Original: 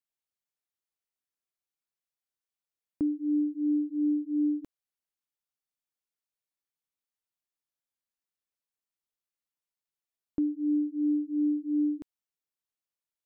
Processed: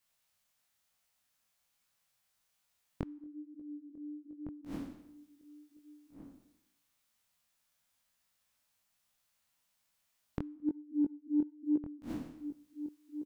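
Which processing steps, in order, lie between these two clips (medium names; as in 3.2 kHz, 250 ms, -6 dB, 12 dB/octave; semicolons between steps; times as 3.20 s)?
spectral sustain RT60 0.81 s; 10.60–11.76 s: gate -26 dBFS, range -8 dB; peaking EQ 370 Hz -13.5 dB 0.56 oct; inverted gate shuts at -35 dBFS, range -27 dB; saturation -29.5 dBFS, distortion -23 dB; chorus 1.1 Hz, delay 16 ms, depth 7.8 ms; echo from a far wall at 250 m, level -11 dB; trim +15.5 dB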